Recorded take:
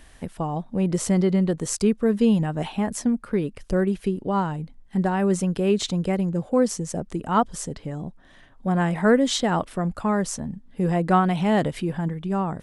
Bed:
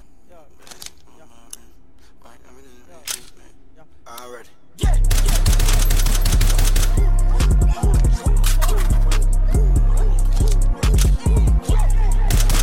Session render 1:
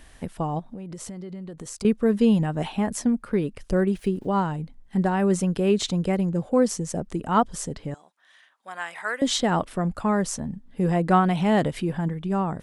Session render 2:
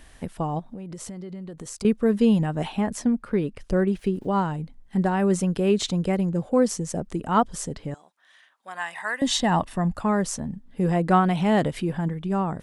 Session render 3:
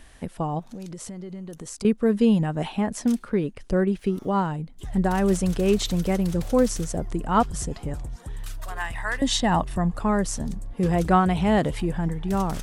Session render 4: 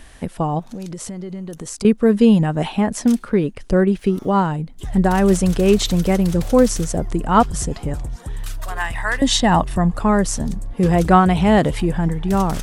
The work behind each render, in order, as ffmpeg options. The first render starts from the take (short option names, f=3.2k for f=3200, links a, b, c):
-filter_complex "[0:a]asettb=1/sr,asplit=3[a][b][c];[a]atrim=end=0.594[d];[b]atrim=start=0.59:end=1.85,asetpts=PTS-STARTPTS,afade=t=in:d=0.004:c=qsin,afade=t=out:st=1.256:d=0.004:c=qsin,acompressor=threshold=-33dB:ratio=12:attack=3.2:release=140:knee=1:detection=peak[e];[c]atrim=start=1.846[f];[d][e]acrossfade=d=0.004:c1=hsin:c2=qsin[g];[g][f]acrossfade=d=0.004:c1=qsin:c2=hsin,asettb=1/sr,asplit=3[h][i][j];[h]atrim=end=3.954[k];[i]atrim=start=3.95:end=4.45,asetpts=PTS-STARTPTS,afade=t=in:d=0.004:c=qsin,afade=t=out:st=0.496:d=0.004:c=qsin,aeval=exprs='val(0)*gte(abs(val(0)),0.00251)':c=same[l];[j]atrim=start=4.446[m];[k][l]acrossfade=d=0.004:c1=hsin:c2=qsin[n];[n][m]acrossfade=d=0.004:c1=qsin:c2=hsin,asettb=1/sr,asplit=3[o][p][q];[o]atrim=end=7.944[r];[p]atrim=start=7.94:end=9.22,asetpts=PTS-STARTPTS,afade=t=in:d=0.004:c=qsin,afade=t=out:st=1.276:d=0.004:c=qsin,highpass=1.3k[s];[q]atrim=start=9.216[t];[r][s]acrossfade=d=0.004:c1=hsin:c2=qsin[u];[u][t]acrossfade=d=0.004:c1=qsin:c2=hsin"
-filter_complex "[0:a]asettb=1/sr,asplit=3[a][b][c];[a]atrim=end=2.814[d];[b]atrim=start=2.81:end=4.14,asetpts=PTS-STARTPTS,afade=t=in:d=0.004:c=qsin,afade=t=out:st=1.326:d=0.004:c=qsin,highshelf=f=8.6k:g=-8[e];[c]atrim=start=4.136[f];[d][e]acrossfade=d=0.004:c1=hsin:c2=qsin[g];[g][f]acrossfade=d=0.004:c1=qsin:c2=hsin,asettb=1/sr,asplit=3[h][i][j];[h]atrim=end=8.764[k];[i]atrim=start=8.76:end=9.98,asetpts=PTS-STARTPTS,afade=t=in:d=0.004:c=qsin,afade=t=out:st=1.216:d=0.004:c=qsin,aecho=1:1:1.1:0.47,atrim=end_sample=53802[l];[j]atrim=start=9.976[m];[k][l]acrossfade=d=0.004:c1=hsin:c2=qsin[n];[n][m]acrossfade=d=0.004:c1=qsin:c2=hsin"
-filter_complex "[1:a]volume=-18.5dB[a];[0:a][a]amix=inputs=2:normalize=0"
-af "volume=6.5dB"